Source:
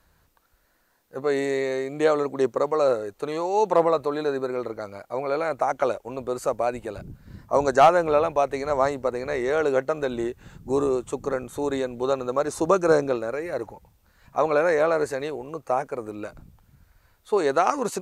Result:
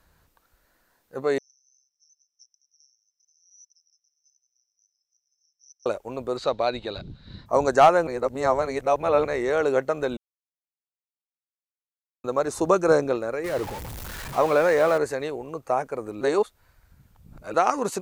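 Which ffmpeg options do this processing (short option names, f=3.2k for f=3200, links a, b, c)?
-filter_complex "[0:a]asettb=1/sr,asplit=3[a][b][c];[a]atrim=end=1.384[d];[b]atrim=start=1.38:end=5.86,asetpts=PTS-STARTPTS,afade=t=in:d=0.004:c=qsin,afade=t=out:st=4.476:d=0.004:c=qsin,asuperpass=centerf=5600:order=20:qfactor=5.4[e];[c]atrim=start=5.856[f];[d][e]acrossfade=d=0.004:c1=hsin:c2=qsin[g];[g][f]acrossfade=d=0.004:c1=qsin:c2=hsin,asettb=1/sr,asplit=3[h][i][j];[h]atrim=end=6.374[k];[i]atrim=start=6.37:end=7.46,asetpts=PTS-STARTPTS,afade=t=in:d=0.004:c=qsin,afade=t=out:st=1.086:d=0.004:c=qsin,lowpass=f=3.9k:t=q:w=9.7[l];[j]atrim=start=7.456[m];[k][l]acrossfade=d=0.004:c1=hsin:c2=qsin[n];[n][m]acrossfade=d=0.004:c1=qsin:c2=hsin,asettb=1/sr,asplit=3[o][p][q];[o]atrim=end=13.444[r];[p]atrim=start=13.44:end=14.98,asetpts=PTS-STARTPTS,afade=t=in:d=0.004:c=qsin,afade=t=out:st=1.536:d=0.004:c=qsin,aeval=exprs='val(0)+0.5*0.0299*sgn(val(0))':c=same[s];[q]atrim=start=14.976[t];[r][s]acrossfade=d=0.004:c1=hsin:c2=qsin[u];[u][t]acrossfade=d=0.004:c1=qsin:c2=hsin,asplit=7[v][w][x][y][z][aa][ab];[v]atrim=end=8.072[ac];[w]atrim=start=8.068:end=9.252,asetpts=PTS-STARTPTS,areverse[ad];[x]atrim=start=9.248:end=10.17,asetpts=PTS-STARTPTS,afade=t=out:st=0.918:d=0.004:c=hsin[ae];[y]atrim=start=10.17:end=12.24,asetpts=PTS-STARTPTS,volume=0[af];[z]atrim=start=12.24:end=16.212,asetpts=PTS-STARTPTS,afade=t=in:d=0.004:c=hsin[ag];[aa]atrim=start=16.208:end=17.542,asetpts=PTS-STARTPTS,areverse[ah];[ab]atrim=start=17.538[ai];[ac][ad]acrossfade=d=0.004:c1=hsin:c2=hsin[aj];[ae][af][ag]concat=n=3:v=0:a=1[ak];[aj][ak]acrossfade=d=0.004:c1=hsin:c2=hsin[al];[al][ah]acrossfade=d=0.004:c1=hsin:c2=hsin[am];[am][ai]acrossfade=d=0.004:c1=hsin:c2=hsin"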